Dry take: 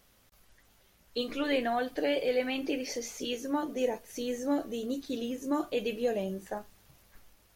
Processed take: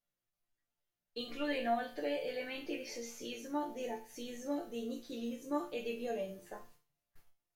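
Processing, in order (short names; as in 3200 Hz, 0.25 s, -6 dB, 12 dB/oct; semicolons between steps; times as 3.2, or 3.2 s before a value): gate -53 dBFS, range -21 dB; resonator bank A#2 major, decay 0.35 s; gain +7.5 dB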